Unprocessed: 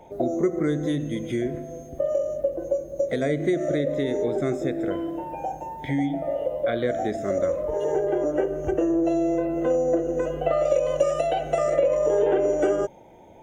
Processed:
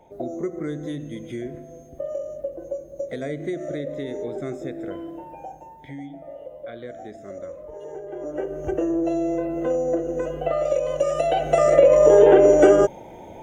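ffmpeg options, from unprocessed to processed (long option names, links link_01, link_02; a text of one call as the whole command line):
ffmpeg -i in.wav -af "volume=15dB,afade=type=out:start_time=5.14:duration=0.83:silence=0.473151,afade=type=in:start_time=8.09:duration=0.62:silence=0.281838,afade=type=in:start_time=11.01:duration=1.05:silence=0.334965" out.wav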